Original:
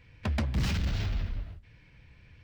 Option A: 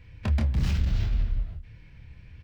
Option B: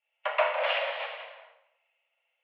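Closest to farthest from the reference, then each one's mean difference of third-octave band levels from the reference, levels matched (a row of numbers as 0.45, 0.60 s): A, B; 2.5, 14.5 dB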